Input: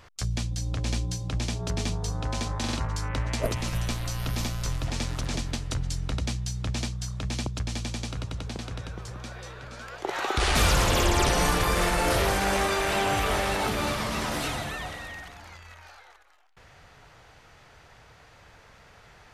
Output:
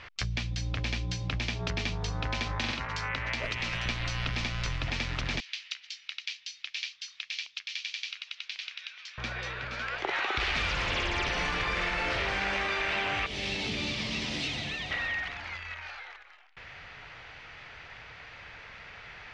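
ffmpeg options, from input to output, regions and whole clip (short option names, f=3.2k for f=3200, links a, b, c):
-filter_complex "[0:a]asettb=1/sr,asplit=3[a][b][c];[a]atrim=end=2.714[d];[b]atrim=start=2.71:end=3.86,asetpts=PTS-STARTPTS,afade=t=in:d=0.004:c=qsin,afade=t=out:st=1.146:d=0.004:c=qsin,bandreject=f=50:t=h:w=6,bandreject=f=100:t=h:w=6,bandreject=f=150:t=h:w=6,bandreject=f=200:t=h:w=6,bandreject=f=250:t=h:w=6,bandreject=f=300:t=h:w=6,bandreject=f=350:t=h:w=6,bandreject=f=400:t=h:w=6,bandreject=f=450:t=h:w=6,acrossover=split=220|1400[e][f][g];[e]acompressor=threshold=-37dB:ratio=4[h];[f]acompressor=threshold=-38dB:ratio=4[i];[g]acompressor=threshold=-36dB:ratio=4[j];[h][i][j]amix=inputs=3:normalize=0[k];[c]atrim=start=3.856[l];[d][k]acrossfade=d=0.004:c1=hsin:c2=qsin[m];[m][l]acrossfade=d=0.004:c1=qsin:c2=hsin,asettb=1/sr,asplit=3[n][o][p];[n]atrim=end=5.404[q];[o]atrim=start=5.4:end=9.18,asetpts=PTS-STARTPTS,afade=t=in:d=0.004:c=qsin,afade=t=out:st=3.776:d=0.004:c=qsin,acompressor=threshold=-31dB:ratio=2.5:attack=3.2:release=140:knee=1:detection=peak,asuperpass=centerf=4000:order=4:qfactor=0.95[r];[p]atrim=start=9.176[s];[q][r]acrossfade=d=0.004:c1=hsin:c2=qsin[t];[t][s]acrossfade=d=0.004:c1=qsin:c2=hsin,asettb=1/sr,asplit=3[u][v][w];[u]atrim=end=13.264[x];[v]atrim=start=13.26:end=14.91,asetpts=PTS-STARTPTS,afade=t=in:d=0.004:c=qsin,afade=t=out:st=1.646:d=0.004:c=qsin,highpass=f=120:p=1,equalizer=f=1.4k:t=o:w=0.93:g=-8.5,acrossover=split=360|3000[y][z][aa];[z]acompressor=threshold=-49dB:ratio=3:attack=3.2:release=140:knee=2.83:detection=peak[ab];[y][ab][aa]amix=inputs=3:normalize=0[ac];[w]atrim=start=14.906[ad];[x][ac]acrossfade=d=0.004:c1=hsin:c2=qsin[ae];[ae][ad]acrossfade=d=0.004:c1=qsin:c2=hsin,equalizer=f=2.3k:w=0.93:g=12.5,acompressor=threshold=-28dB:ratio=6,lowpass=f=5.6k:w=0.5412,lowpass=f=5.6k:w=1.3066"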